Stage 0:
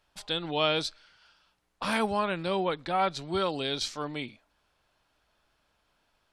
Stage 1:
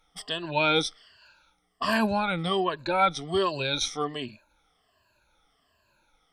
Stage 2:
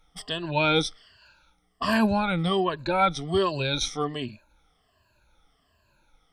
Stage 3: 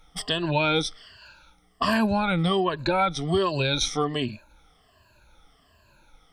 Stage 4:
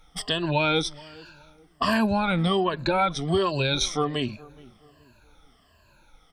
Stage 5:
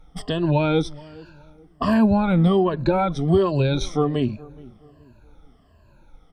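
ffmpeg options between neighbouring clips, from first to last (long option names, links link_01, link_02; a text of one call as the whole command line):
ffmpeg -i in.wav -af "afftfilt=real='re*pow(10,19/40*sin(2*PI*(1.4*log(max(b,1)*sr/1024/100)/log(2)-(-1.3)*(pts-256)/sr)))':imag='im*pow(10,19/40*sin(2*PI*(1.4*log(max(b,1)*sr/1024/100)/log(2)-(-1.3)*(pts-256)/sr)))':win_size=1024:overlap=0.75" out.wav
ffmpeg -i in.wav -af "lowshelf=frequency=200:gain=9" out.wav
ffmpeg -i in.wav -af "acompressor=threshold=-29dB:ratio=3,volume=7dB" out.wav
ffmpeg -i in.wav -filter_complex "[0:a]asplit=2[link_01][link_02];[link_02]adelay=422,lowpass=frequency=1100:poles=1,volume=-21dB,asplit=2[link_03][link_04];[link_04]adelay=422,lowpass=frequency=1100:poles=1,volume=0.38,asplit=2[link_05][link_06];[link_06]adelay=422,lowpass=frequency=1100:poles=1,volume=0.38[link_07];[link_01][link_03][link_05][link_07]amix=inputs=4:normalize=0" out.wav
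ffmpeg -i in.wav -af "tiltshelf=frequency=970:gain=8" out.wav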